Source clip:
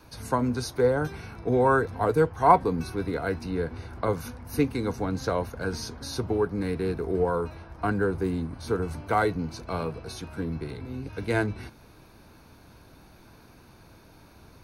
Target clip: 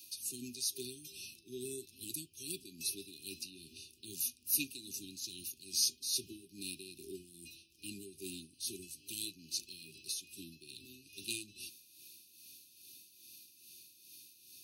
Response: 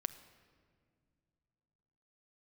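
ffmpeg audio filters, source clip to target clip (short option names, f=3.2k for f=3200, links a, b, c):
-af "aderivative,tremolo=f=2.4:d=0.62,afftfilt=real='re*(1-between(b*sr/4096,400,2400))':imag='im*(1-between(b*sr/4096,400,2400))':win_size=4096:overlap=0.75,volume=10dB"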